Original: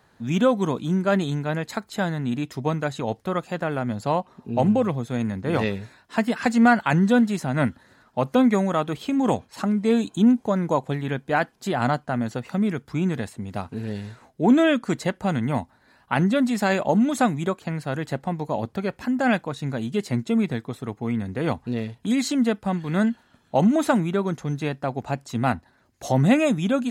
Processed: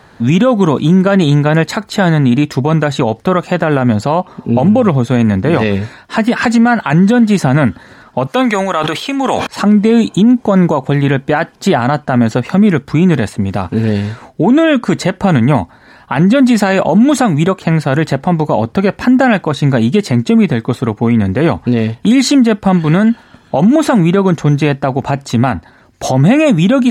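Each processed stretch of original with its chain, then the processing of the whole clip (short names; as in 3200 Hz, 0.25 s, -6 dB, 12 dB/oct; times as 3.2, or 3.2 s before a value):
8.27–9.47 HPF 1100 Hz 6 dB/oct + sustainer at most 69 dB/s
whole clip: high shelf 8200 Hz -10 dB; compressor, threshold -20 dBFS; maximiser +18.5 dB; gain -1 dB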